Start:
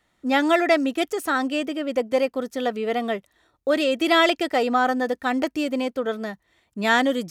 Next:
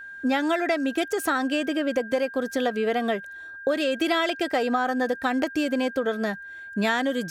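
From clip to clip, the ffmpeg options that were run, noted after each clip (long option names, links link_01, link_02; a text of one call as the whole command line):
ffmpeg -i in.wav -af "acompressor=threshold=-27dB:ratio=6,aeval=exprs='val(0)+0.00708*sin(2*PI*1600*n/s)':channel_layout=same,volume=5.5dB" out.wav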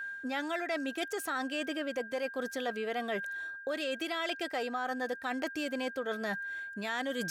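ffmpeg -i in.wav -af "lowshelf=frequency=480:gain=-8,areverse,acompressor=threshold=-34dB:ratio=6,areverse,volume=2dB" out.wav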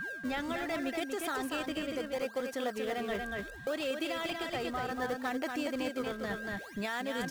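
ffmpeg -i in.wav -filter_complex "[0:a]asplit=2[link_01][link_02];[link_02]acrusher=samples=30:mix=1:aa=0.000001:lfo=1:lforange=48:lforate=0.69,volume=-9dB[link_03];[link_01][link_03]amix=inputs=2:normalize=0,aecho=1:1:236:0.596,alimiter=level_in=0.5dB:limit=-24dB:level=0:latency=1:release=416,volume=-0.5dB" out.wav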